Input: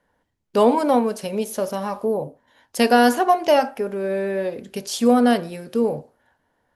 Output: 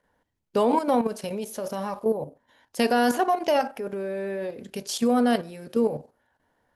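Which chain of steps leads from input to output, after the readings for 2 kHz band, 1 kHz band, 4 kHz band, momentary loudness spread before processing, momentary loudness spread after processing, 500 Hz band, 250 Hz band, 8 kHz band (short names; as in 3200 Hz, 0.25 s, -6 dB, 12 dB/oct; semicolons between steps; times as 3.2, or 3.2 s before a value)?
-6.0 dB, -5.5 dB, -5.0 dB, 12 LU, 11 LU, -5.5 dB, -5.0 dB, -4.5 dB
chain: level quantiser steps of 10 dB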